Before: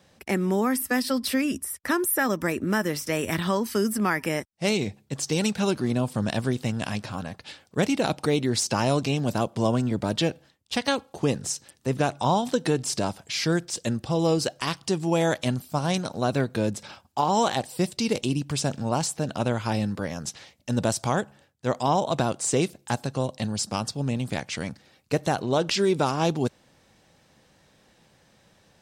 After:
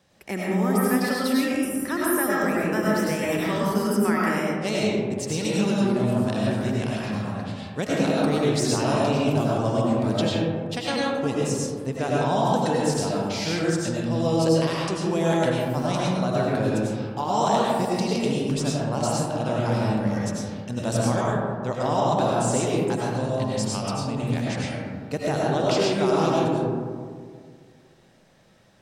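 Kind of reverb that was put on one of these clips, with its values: algorithmic reverb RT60 2 s, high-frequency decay 0.3×, pre-delay 60 ms, DRR -5.5 dB; trim -5 dB

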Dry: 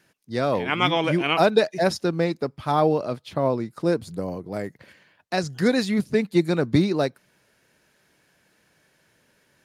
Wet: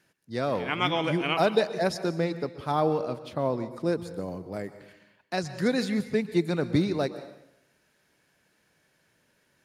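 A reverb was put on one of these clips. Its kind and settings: plate-style reverb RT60 0.83 s, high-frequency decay 0.85×, pre-delay 110 ms, DRR 12 dB; trim -5 dB

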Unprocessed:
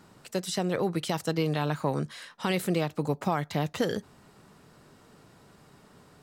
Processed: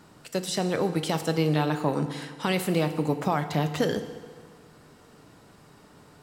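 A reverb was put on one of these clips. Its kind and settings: FDN reverb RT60 1.7 s, low-frequency decay 0.85×, high-frequency decay 0.8×, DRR 8.5 dB; trim +2 dB

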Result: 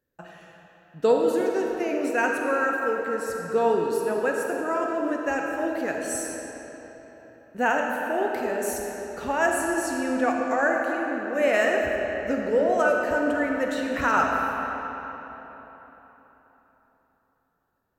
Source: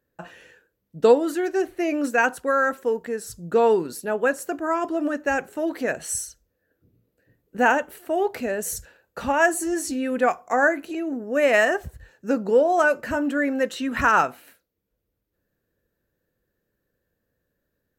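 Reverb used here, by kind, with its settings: algorithmic reverb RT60 4 s, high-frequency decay 0.7×, pre-delay 5 ms, DRR 0 dB; trim -5 dB

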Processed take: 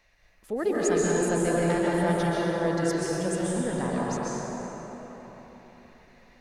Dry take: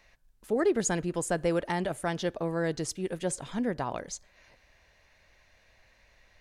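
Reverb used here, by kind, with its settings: plate-style reverb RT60 4.3 s, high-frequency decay 0.45×, pre-delay 115 ms, DRR -6 dB; trim -3 dB

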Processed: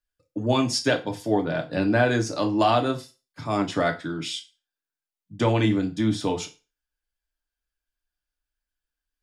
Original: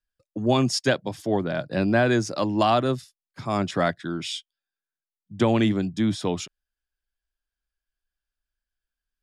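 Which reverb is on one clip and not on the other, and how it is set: FDN reverb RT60 0.31 s, low-frequency decay 0.85×, high-frequency decay 0.95×, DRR 2.5 dB; trim -1.5 dB

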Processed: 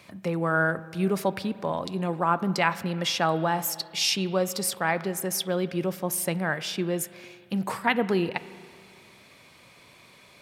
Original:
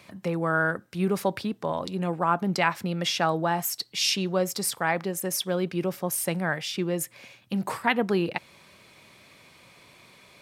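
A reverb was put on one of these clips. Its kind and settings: spring tank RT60 2.2 s, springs 31/42 ms, chirp 25 ms, DRR 15 dB

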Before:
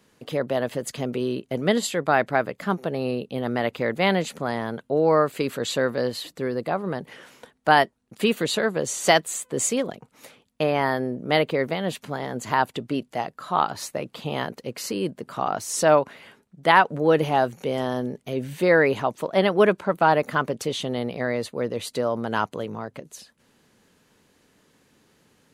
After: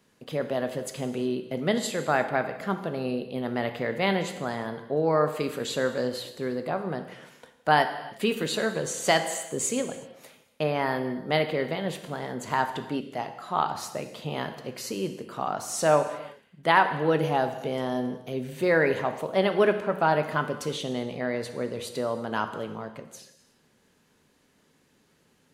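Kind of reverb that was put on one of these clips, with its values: gated-style reverb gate 390 ms falling, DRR 7 dB; trim -4.5 dB

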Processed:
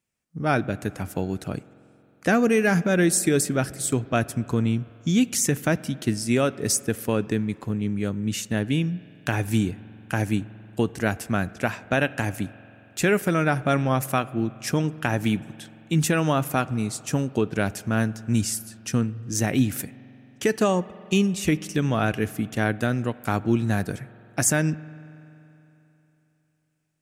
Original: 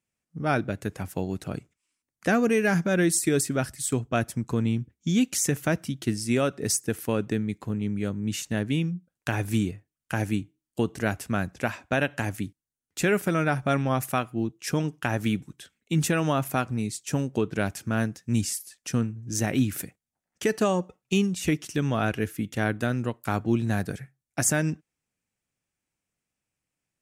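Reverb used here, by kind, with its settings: spring tank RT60 3.2 s, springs 45 ms, chirp 55 ms, DRR 18.5 dB; trim +2.5 dB

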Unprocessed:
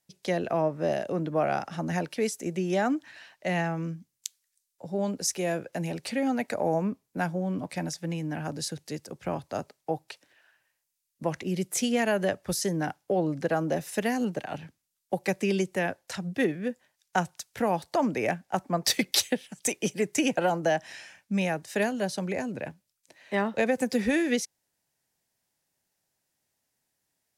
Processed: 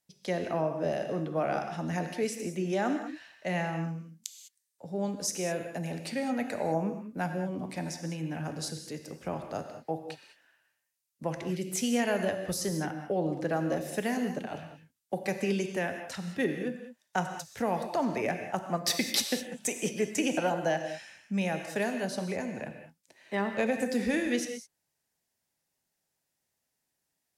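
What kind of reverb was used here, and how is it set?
gated-style reverb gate 230 ms flat, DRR 5.5 dB; trim -4 dB

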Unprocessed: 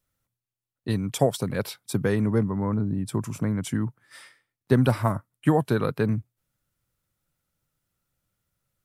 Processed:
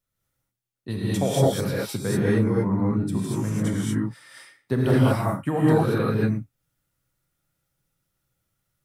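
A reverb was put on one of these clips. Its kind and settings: gated-style reverb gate 260 ms rising, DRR -7 dB; trim -5.5 dB

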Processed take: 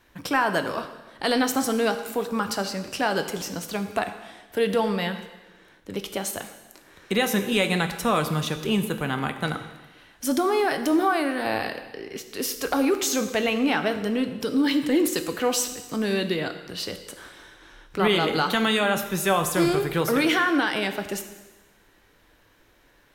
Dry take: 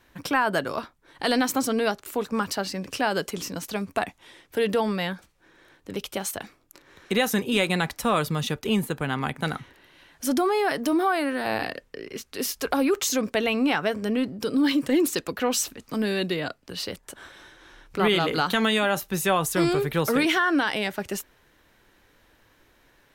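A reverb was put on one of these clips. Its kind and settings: plate-style reverb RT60 1.2 s, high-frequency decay 1×, DRR 7.5 dB

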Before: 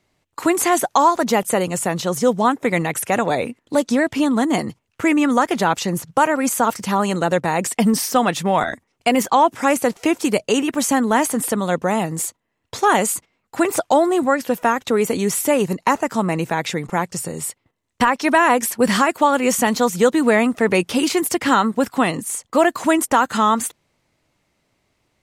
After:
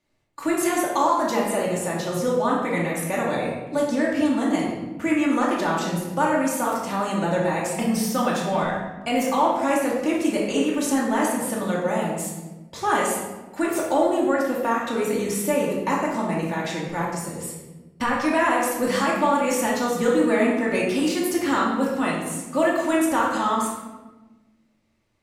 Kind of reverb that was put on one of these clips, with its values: simulated room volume 670 m³, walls mixed, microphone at 2.5 m; trim -11 dB

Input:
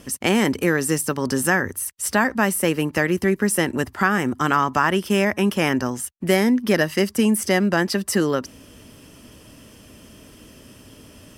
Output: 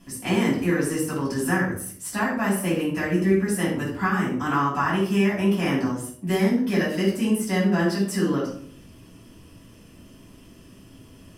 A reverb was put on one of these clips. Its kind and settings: simulated room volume 690 m³, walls furnished, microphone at 8.8 m; trim -16 dB

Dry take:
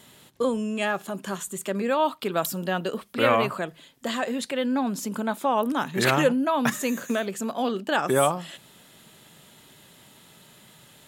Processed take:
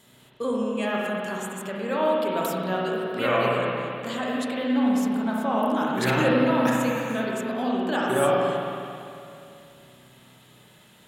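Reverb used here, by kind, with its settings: spring tank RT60 2.6 s, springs 32/48/56 ms, chirp 65 ms, DRR -4 dB; trim -5.5 dB

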